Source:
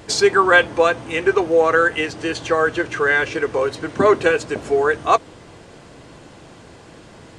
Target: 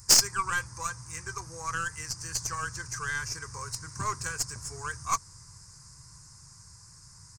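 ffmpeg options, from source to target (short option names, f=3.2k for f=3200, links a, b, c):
-af "dynaudnorm=f=260:g=13:m=11.5dB,firequalizer=gain_entry='entry(130,0);entry(240,-25);entry(680,-29);entry(980,-7);entry(2300,-16);entry(3200,-28);entry(5000,10)':delay=0.05:min_phase=1,aeval=exprs='0.841*(cos(1*acos(clip(val(0)/0.841,-1,1)))-cos(1*PI/2))+0.0473*(cos(3*acos(clip(val(0)/0.841,-1,1)))-cos(3*PI/2))+0.299*(cos(4*acos(clip(val(0)/0.841,-1,1)))-cos(4*PI/2))+0.211*(cos(6*acos(clip(val(0)/0.841,-1,1)))-cos(6*PI/2))+0.0168*(cos(7*acos(clip(val(0)/0.841,-1,1)))-cos(7*PI/2))':c=same,volume=-2.5dB"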